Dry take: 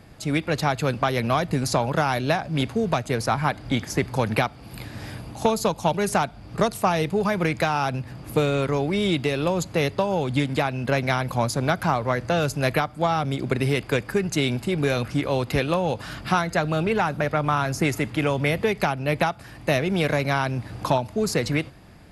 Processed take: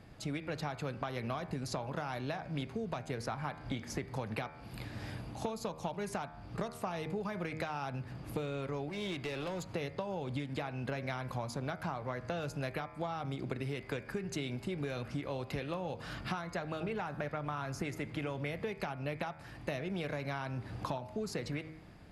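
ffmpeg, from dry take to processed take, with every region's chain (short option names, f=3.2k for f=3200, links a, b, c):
-filter_complex "[0:a]asettb=1/sr,asplit=3[a][b][c];[a]atrim=end=8.894[d];[b]atrim=start=8.89:end=9.69,asetpts=PTS-STARTPTS,afade=t=in:d=0.004:c=qsin,afade=t=out:st=0.796:d=0.004:c=qsin,acrossover=split=600|2600[e][f][g];[e]acompressor=threshold=-29dB:ratio=4[h];[f]acompressor=threshold=-31dB:ratio=4[i];[g]acompressor=threshold=-35dB:ratio=4[j];[h][i][j]amix=inputs=3:normalize=0,volume=26dB,asoftclip=hard,volume=-26dB[k];[c]atrim=start=9.686[l];[d][k]acrossfade=d=0.004:c1=hsin:c2=qsin[m];[m][l]acrossfade=d=0.004:c1=qsin:c2=hsin,highshelf=f=7.3k:g=-9,bandreject=f=78.73:t=h:w=4,bandreject=f=157.46:t=h:w=4,bandreject=f=236.19:t=h:w=4,bandreject=f=314.92:t=h:w=4,bandreject=f=393.65:t=h:w=4,bandreject=f=472.38:t=h:w=4,bandreject=f=551.11:t=h:w=4,bandreject=f=629.84:t=h:w=4,bandreject=f=708.57:t=h:w=4,bandreject=f=787.3:t=h:w=4,bandreject=f=866.03:t=h:w=4,bandreject=f=944.76:t=h:w=4,bandreject=f=1.02349k:t=h:w=4,bandreject=f=1.10222k:t=h:w=4,bandreject=f=1.18095k:t=h:w=4,bandreject=f=1.25968k:t=h:w=4,bandreject=f=1.33841k:t=h:w=4,bandreject=f=1.41714k:t=h:w=4,bandreject=f=1.49587k:t=h:w=4,bandreject=f=1.5746k:t=h:w=4,bandreject=f=1.65333k:t=h:w=4,bandreject=f=1.73206k:t=h:w=4,bandreject=f=1.81079k:t=h:w=4,bandreject=f=1.88952k:t=h:w=4,bandreject=f=1.96825k:t=h:w=4,bandreject=f=2.04698k:t=h:w=4,bandreject=f=2.12571k:t=h:w=4,bandreject=f=2.20444k:t=h:w=4,bandreject=f=2.28317k:t=h:w=4,bandreject=f=2.3619k:t=h:w=4,bandreject=f=2.44063k:t=h:w=4,bandreject=f=2.51936k:t=h:w=4,acompressor=threshold=-28dB:ratio=6,volume=-6.5dB"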